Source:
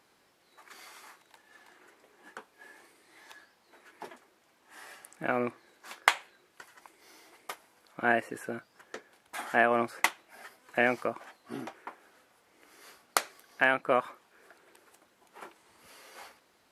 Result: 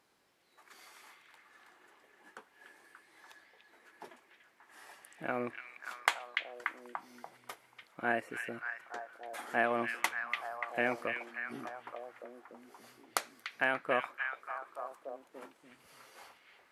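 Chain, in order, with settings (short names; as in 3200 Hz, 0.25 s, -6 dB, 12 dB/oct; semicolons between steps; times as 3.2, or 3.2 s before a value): delay with a stepping band-pass 0.291 s, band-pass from 2500 Hz, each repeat -0.7 oct, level -1.5 dB; gain -6 dB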